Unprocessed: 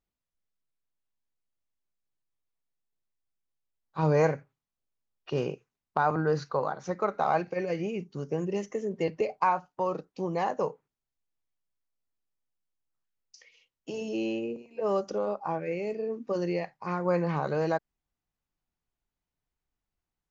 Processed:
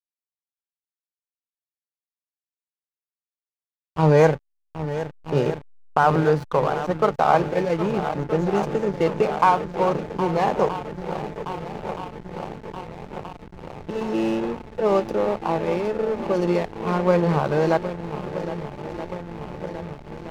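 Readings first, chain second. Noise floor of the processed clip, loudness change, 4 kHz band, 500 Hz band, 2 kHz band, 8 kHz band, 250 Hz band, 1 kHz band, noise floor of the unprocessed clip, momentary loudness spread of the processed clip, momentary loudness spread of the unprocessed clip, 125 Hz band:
under -85 dBFS, +7.5 dB, +9.5 dB, +8.5 dB, +8.0 dB, no reading, +9.0 dB, +8.5 dB, under -85 dBFS, 16 LU, 8 LU, +9.5 dB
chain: whistle 870 Hz -44 dBFS; level-controlled noise filter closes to 1.8 kHz, open at -24 dBFS; on a send: shuffle delay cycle 1274 ms, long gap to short 1.5:1, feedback 73%, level -11 dB; on the sum: hysteresis with a dead band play -31.5 dBFS; trim +8.5 dB

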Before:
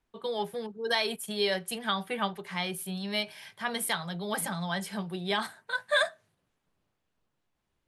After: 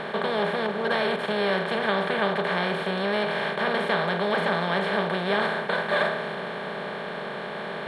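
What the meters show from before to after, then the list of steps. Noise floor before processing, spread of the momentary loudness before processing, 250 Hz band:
-80 dBFS, 8 LU, +6.5 dB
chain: spectral levelling over time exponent 0.2; tape spacing loss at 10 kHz 29 dB

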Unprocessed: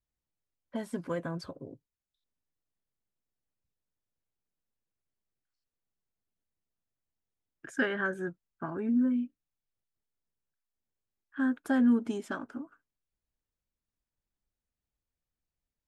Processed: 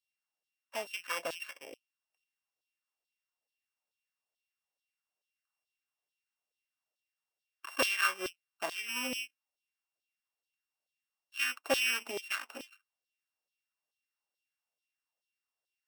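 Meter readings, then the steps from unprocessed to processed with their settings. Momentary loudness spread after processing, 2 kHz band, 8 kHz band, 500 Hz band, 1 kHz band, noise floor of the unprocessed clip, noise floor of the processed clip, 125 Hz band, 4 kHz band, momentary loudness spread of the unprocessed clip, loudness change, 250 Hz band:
18 LU, +2.5 dB, no reading, -2.5 dB, +2.0 dB, under -85 dBFS, under -85 dBFS, under -20 dB, +14.5 dB, 18 LU, -2.5 dB, -19.5 dB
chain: sorted samples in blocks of 16 samples; Chebyshev shaper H 2 -16 dB, 8 -28 dB, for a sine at -15.5 dBFS; LFO high-pass saw down 2.3 Hz 500–3900 Hz

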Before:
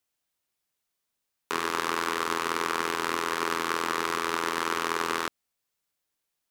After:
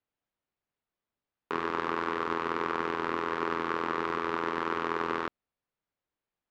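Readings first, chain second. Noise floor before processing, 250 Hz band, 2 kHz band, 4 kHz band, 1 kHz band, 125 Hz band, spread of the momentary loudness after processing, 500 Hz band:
-82 dBFS, +0.5 dB, -4.5 dB, -11.0 dB, -2.5 dB, +1.0 dB, 2 LU, 0.0 dB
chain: tape spacing loss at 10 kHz 35 dB; trim +1.5 dB

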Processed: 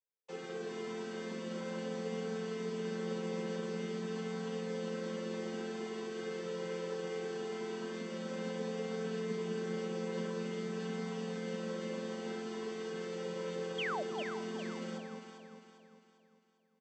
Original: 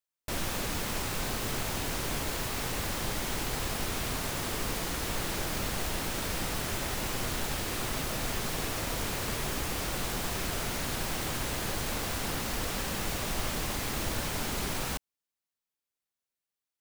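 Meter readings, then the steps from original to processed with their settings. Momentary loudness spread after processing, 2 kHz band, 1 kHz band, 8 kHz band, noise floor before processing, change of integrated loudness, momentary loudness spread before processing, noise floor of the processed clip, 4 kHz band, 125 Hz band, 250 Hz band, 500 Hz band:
4 LU, -10.0 dB, -9.5 dB, -19.5 dB, under -85 dBFS, -7.0 dB, 0 LU, -68 dBFS, -13.0 dB, -9.0 dB, -1.5 dB, +1.5 dB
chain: vocoder on a held chord major triad, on F3; peaking EQ 150 Hz -5 dB 2.5 oct; comb 5.2 ms, depth 96%; small resonant body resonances 450/990/2500 Hz, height 15 dB, ringing for 70 ms; flange 0.15 Hz, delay 2 ms, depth 3.4 ms, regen -26%; painted sound fall, 13.78–14.03 s, 530–3500 Hz -31 dBFS; echo whose repeats swap between lows and highs 200 ms, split 850 Hz, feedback 65%, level -3.5 dB; trim -6.5 dB

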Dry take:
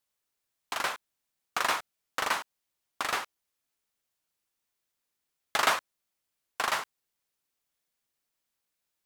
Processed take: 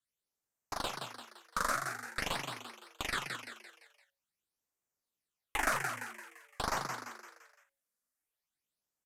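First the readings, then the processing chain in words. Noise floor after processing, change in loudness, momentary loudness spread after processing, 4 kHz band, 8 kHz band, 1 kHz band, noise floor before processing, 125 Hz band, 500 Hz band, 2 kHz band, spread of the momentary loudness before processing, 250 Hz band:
under -85 dBFS, -6.0 dB, 18 LU, -6.0 dB, -3.5 dB, -5.0 dB, -84 dBFS, +9.0 dB, -4.0 dB, -4.5 dB, 17 LU, +2.0 dB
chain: Chebyshev shaper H 6 -18 dB, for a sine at -9.5 dBFS; in parallel at +1 dB: level held to a coarse grid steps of 16 dB; on the sum: phase shifter stages 8, 0.47 Hz, lowest notch 100–4200 Hz; resampled via 32 kHz; on a send: frequency-shifting echo 171 ms, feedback 45%, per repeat +110 Hz, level -5.5 dB; on the sum: loudspeaker Doppler distortion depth 0.29 ms; trim -7 dB

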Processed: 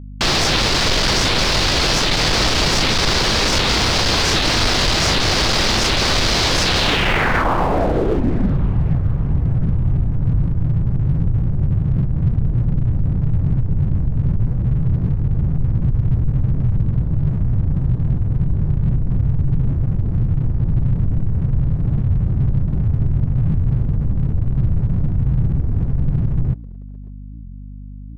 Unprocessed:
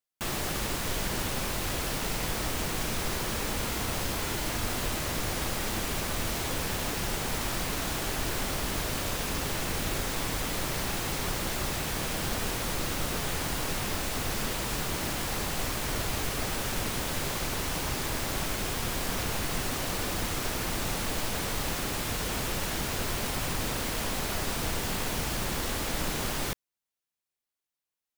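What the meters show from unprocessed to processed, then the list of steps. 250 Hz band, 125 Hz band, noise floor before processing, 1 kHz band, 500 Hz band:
+13.0 dB, +20.0 dB, under -85 dBFS, +10.0 dB, +10.0 dB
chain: peaking EQ 230 Hz -2 dB 0.54 oct; saturation -32.5 dBFS, distortion -10 dB; low-pass sweep 4.7 kHz -> 130 Hz, 6.75–8.69 s; on a send: tape echo 565 ms, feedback 65%, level -19 dB, low-pass 2.5 kHz; on the sum: crossover distortion -57 dBFS; hum 50 Hz, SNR 18 dB; loudness maximiser +30 dB; warped record 78 rpm, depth 250 cents; trim -7.5 dB

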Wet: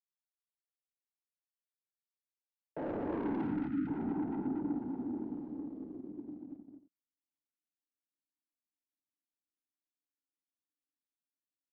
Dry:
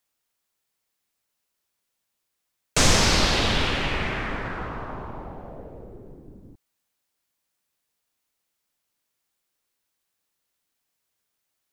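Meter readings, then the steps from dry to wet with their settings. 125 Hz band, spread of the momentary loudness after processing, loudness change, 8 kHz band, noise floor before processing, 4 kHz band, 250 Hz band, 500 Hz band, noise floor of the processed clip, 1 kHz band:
-17.5 dB, 13 LU, -15.0 dB, under -40 dB, -79 dBFS, under -40 dB, -2.0 dB, -11.5 dB, under -85 dBFS, -16.5 dB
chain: sorted samples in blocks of 16 samples; cascade formant filter u; hum notches 60/120/180 Hz; dynamic bell 160 Hz, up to +5 dB, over -52 dBFS, Q 2.2; waveshaping leveller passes 3; in parallel at -6 dB: small samples zeroed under -36 dBFS; on the sum: band-pass sweep 2.8 kHz -> 260 Hz, 1.81–3.40 s; saturation -31.5 dBFS, distortion -8 dB; spectral selection erased 3.44–3.87 s, 330–1200 Hz; on a send: multi-tap echo 50/113/234/322 ms -6/-9.5/-3.5/-15 dB; on the sum: trim -3 dB

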